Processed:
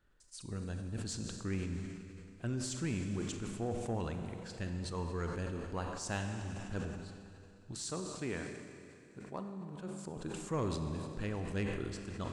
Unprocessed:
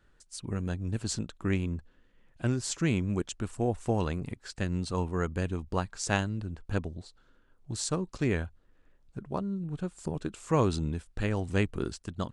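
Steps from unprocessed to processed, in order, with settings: 7.72–10.17 HPF 240 Hz 6 dB/oct; Schroeder reverb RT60 2.9 s, combs from 31 ms, DRR 6.5 dB; soft clip -18 dBFS, distortion -19 dB; sustainer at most 38 dB/s; gain -8 dB

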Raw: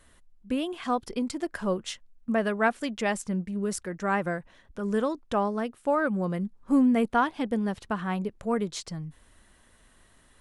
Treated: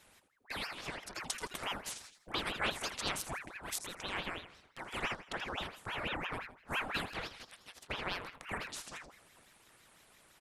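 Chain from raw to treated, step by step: 1.22–3.03 high shelf 4900 Hz +6.5 dB; 7.09–7.87 elliptic high-pass 1100 Hz; on a send: feedback echo 82 ms, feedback 36%, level -12 dB; on the sum: spectral gate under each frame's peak -10 dB weak; ring modulator with a swept carrier 1200 Hz, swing 80%, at 5.9 Hz; gain +1.5 dB

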